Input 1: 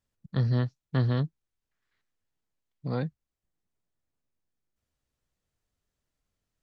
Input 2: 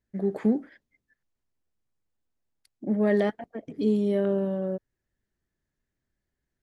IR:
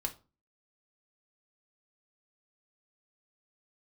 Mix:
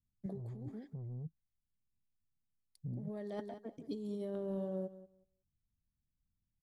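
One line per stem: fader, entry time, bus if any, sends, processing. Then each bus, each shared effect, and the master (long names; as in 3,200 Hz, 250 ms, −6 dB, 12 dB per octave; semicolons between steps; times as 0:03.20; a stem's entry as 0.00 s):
−4.5 dB, 0.00 s, no send, no echo send, inverse Chebyshev low-pass filter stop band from 800 Hz, stop band 60 dB; soft clipping −28 dBFS, distortion −12 dB
−14.0 dB, 0.10 s, no send, echo send −15.5 dB, noise gate with hold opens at −57 dBFS; high-shelf EQ 3,100 Hz +7 dB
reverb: not used
echo: repeating echo 184 ms, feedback 16%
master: flat-topped bell 2,000 Hz −8 dB 1.3 octaves; compressor whose output falls as the input rises −41 dBFS, ratio −1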